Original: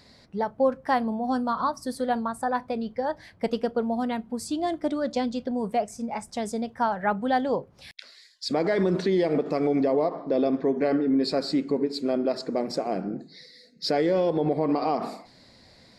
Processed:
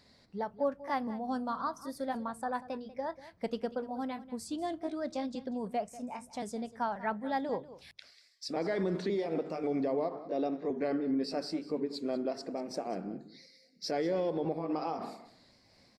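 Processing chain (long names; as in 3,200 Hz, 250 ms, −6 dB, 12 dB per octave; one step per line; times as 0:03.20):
pitch shifter gated in a rhythm +1 semitone, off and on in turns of 535 ms
mains-hum notches 50/100/150 Hz
single-tap delay 191 ms −16.5 dB
level −8.5 dB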